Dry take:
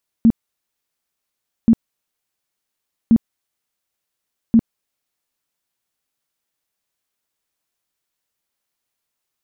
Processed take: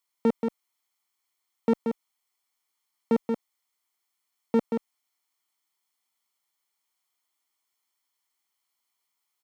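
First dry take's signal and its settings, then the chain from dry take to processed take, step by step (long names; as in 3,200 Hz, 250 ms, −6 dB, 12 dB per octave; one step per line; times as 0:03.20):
tone bursts 228 Hz, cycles 12, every 1.43 s, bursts 4, −7 dBFS
lower of the sound and its delayed copy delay 0.92 ms
high-pass filter 380 Hz 12 dB per octave
on a send: single-tap delay 180 ms −5.5 dB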